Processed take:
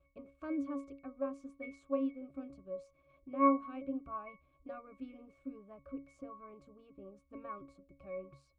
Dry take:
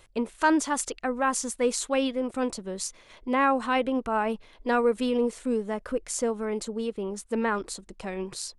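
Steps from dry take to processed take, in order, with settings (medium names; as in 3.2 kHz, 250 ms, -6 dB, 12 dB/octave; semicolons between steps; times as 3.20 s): pitch-class resonator C#, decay 0.29 s; trim +2.5 dB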